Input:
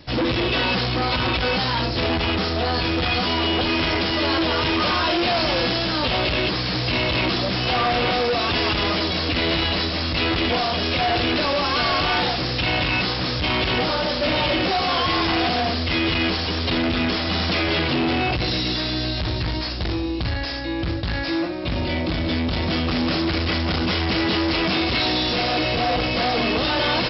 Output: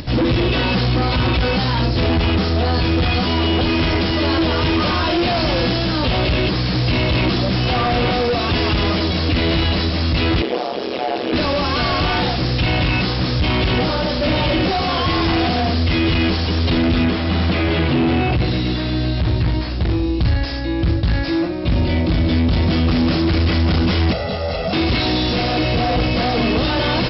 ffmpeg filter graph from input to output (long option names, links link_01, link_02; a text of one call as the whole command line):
ffmpeg -i in.wav -filter_complex "[0:a]asettb=1/sr,asplit=3[link_01][link_02][link_03];[link_01]atrim=end=10.424[link_04];[link_02]atrim=start=10.42:end=11.33,asetpts=PTS-STARTPTS,afade=type=in:duration=0.004:curve=qsin,afade=type=out:start_time=0.906:duration=0.004:curve=qsin,tiltshelf=frequency=640:gain=4,tremolo=f=130:d=0.947,highpass=frequency=420:width_type=q:width=1.6[link_05];[link_03]atrim=start=11.326[link_06];[link_04][link_05]acrossfade=duration=0.004:curve1=hsin:curve2=qsin[link_07];[link_07][link_06]acrossfade=duration=0.004:curve1=qsin:curve2=hsin,asettb=1/sr,asplit=3[link_08][link_09][link_10];[link_08]atrim=end=17.044[link_11];[link_09]atrim=start=17.04:end=20.02,asetpts=PTS-STARTPTS,afade=type=in:duration=0.004:curve=qsin,afade=type=out:start_time=2.976:duration=0.004:curve=qsin,acrossover=split=4000[link_12][link_13];[link_13]acompressor=threshold=-44dB:ratio=4:attack=1:release=60[link_14];[link_12][link_14]amix=inputs=2:normalize=0,highpass=52[link_15];[link_10]atrim=start=20.016[link_16];[link_11][link_15]acrossfade=duration=0.004:curve1=hsin:curve2=qsin[link_17];[link_17][link_16]acrossfade=duration=0.004:curve1=qsin:curve2=hsin,asettb=1/sr,asplit=3[link_18][link_19][link_20];[link_18]atrim=end=24.124[link_21];[link_19]atrim=start=24.12:end=24.73,asetpts=PTS-STARTPTS,afade=type=in:duration=0.004:curve=qsin,afade=type=out:start_time=0.606:duration=0.004:curve=qsin,aecho=1:1:1.5:0.93,atrim=end_sample=26901,acrossover=split=390|4900[link_22][link_23][link_24];[link_22]acompressor=threshold=-36dB:ratio=4[link_25];[link_23]acompressor=threshold=-34dB:ratio=4[link_26];[link_24]acompressor=threshold=-39dB:ratio=4[link_27];[link_25][link_26][link_27]amix=inputs=3:normalize=0,equalizer=frequency=560:width=0.78:gain=12.5[link_28];[link_20]atrim=start=24.726[link_29];[link_21][link_28]acrossfade=duration=0.004:curve1=hsin:curve2=qsin[link_30];[link_30][link_29]acrossfade=duration=0.004:curve1=qsin:curve2=hsin,lowshelf=frequency=320:gain=10,acompressor=mode=upward:threshold=-23dB:ratio=2.5" out.wav